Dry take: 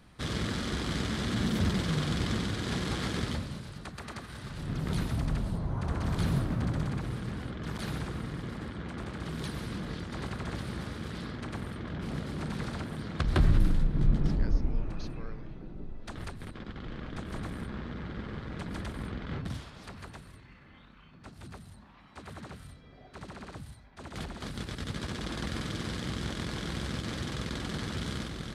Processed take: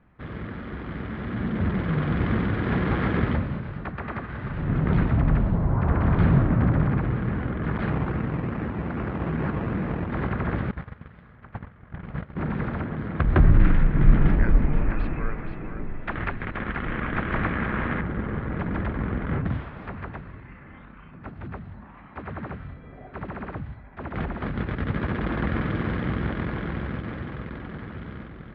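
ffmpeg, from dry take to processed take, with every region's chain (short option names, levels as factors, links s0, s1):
-filter_complex "[0:a]asettb=1/sr,asplit=3[s0][s1][s2];[s0]atrim=end=7.904[s3];[s1]atrim=start=7.9:end=10.1,asetpts=PTS-STARTPTS,afade=t=in:d=0.004:c=qsin,afade=t=out:st=2.196:d=0.004:c=qsin,highpass=49,acrusher=samples=16:mix=1:aa=0.000001:lfo=1:lforange=9.6:lforate=2.5[s4];[s2]atrim=start=10.096[s5];[s3][s4]acrossfade=d=0.004:c1=hsin:c2=qsin[s6];[s6][s5]acrossfade=d=0.004:c1=qsin:c2=hsin,asettb=1/sr,asplit=3[s7][s8][s9];[s7]atrim=end=10.714[s10];[s8]atrim=start=10.71:end=12.37,asetpts=PTS-STARTPTS,afade=t=in:d=0.004:c=qsin,afade=t=out:st=1.656:d=0.004:c=qsin,equalizer=f=310:w=1.4:g=-11,agate=range=0.126:threshold=0.0126:ratio=16:release=100:detection=peak[s11];[s9]atrim=start=12.366[s12];[s10][s11]acrossfade=d=0.004:c1=hsin:c2=qsin[s13];[s13][s12]acrossfade=d=0.004:c1=qsin:c2=hsin,asettb=1/sr,asplit=3[s14][s15][s16];[s14]atrim=end=13.594[s17];[s15]atrim=start=13.59:end=18.01,asetpts=PTS-STARTPTS,afade=t=in:d=0.004:c=qsin,afade=t=out:st=4.416:d=0.004:c=qsin,equalizer=f=2300:w=0.52:g=10.5,aecho=1:1:476:0.398,atrim=end_sample=194922[s18];[s16]atrim=start=18.006[s19];[s17][s18]acrossfade=d=0.004:c1=hsin:c2=qsin[s20];[s20][s19]acrossfade=d=0.004:c1=qsin:c2=hsin,lowpass=f=2200:w=0.5412,lowpass=f=2200:w=1.3066,dynaudnorm=f=130:g=31:m=3.98,volume=0.794"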